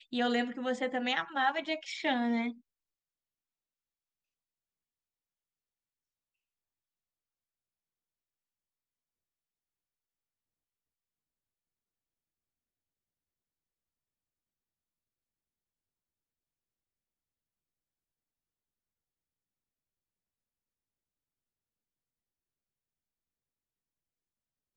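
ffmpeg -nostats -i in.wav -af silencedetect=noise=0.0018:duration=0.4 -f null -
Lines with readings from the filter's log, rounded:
silence_start: 2.60
silence_end: 24.76 | silence_duration: 22.17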